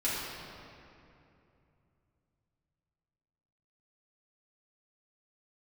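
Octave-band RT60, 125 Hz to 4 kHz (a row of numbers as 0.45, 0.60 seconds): 4.3, 3.3, 2.9, 2.6, 2.3, 1.7 seconds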